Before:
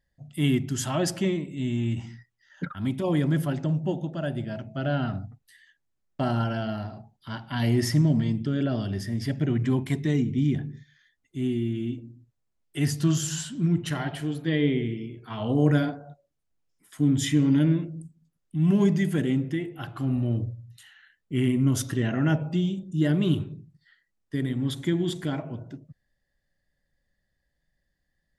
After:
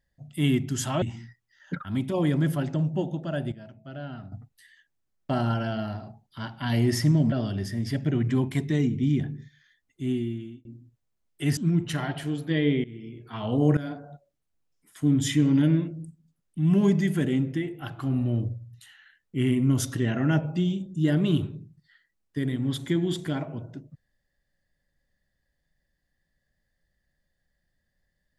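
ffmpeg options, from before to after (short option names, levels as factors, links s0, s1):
-filter_complex "[0:a]asplit=9[s0][s1][s2][s3][s4][s5][s6][s7][s8];[s0]atrim=end=1.022[s9];[s1]atrim=start=1.918:end=4.422[s10];[s2]atrim=start=4.418:end=5.222,asetpts=PTS-STARTPTS,volume=0.282[s11];[s3]atrim=start=5.218:end=8.222[s12];[s4]atrim=start=8.668:end=12,asetpts=PTS-STARTPTS,afade=t=out:st=2.802:d=0.53[s13];[s5]atrim=start=12:end=12.922,asetpts=PTS-STARTPTS,afade=t=in:d=0.004:c=hsin[s14];[s6]atrim=start=13.538:end=14.81,asetpts=PTS-STARTPTS,afade=t=out:st=1.268:d=0.004:c=hsin:silence=0.1[s15];[s7]atrim=start=14.81:end=15.74,asetpts=PTS-STARTPTS,afade=t=in:d=0.43:silence=0.1,afade=t=out:st=0.926:d=0.004:c=hsin:silence=0.11885[s16];[s8]atrim=start=15.74,asetpts=PTS-STARTPTS,afade=t=in:d=0.29:silence=0.11885[s17];[s9][s10]acrossfade=d=0.004:c1=hsin:c2=hsin[s18];[s18][s11]acrossfade=d=0.004:c1=hsin:c2=hsin[s19];[s19][s12]acrossfade=d=0.004:c1=hsin:c2=hsin[s20];[s13][s14]concat=n=2:v=0:a=1[s21];[s20][s21]acrossfade=d=0.004:c1=hsin:c2=hsin[s22];[s15][s16][s17]concat=n=3:v=0:a=1[s23];[s22][s23]acrossfade=d=0.004:c1=hsin:c2=hsin"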